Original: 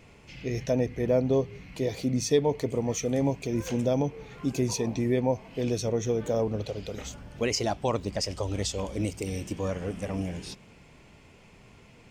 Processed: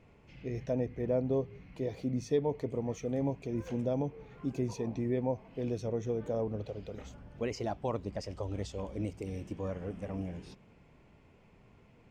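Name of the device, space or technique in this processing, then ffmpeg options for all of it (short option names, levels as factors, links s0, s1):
through cloth: -af "highshelf=f=2900:g=-14.5,volume=0.501"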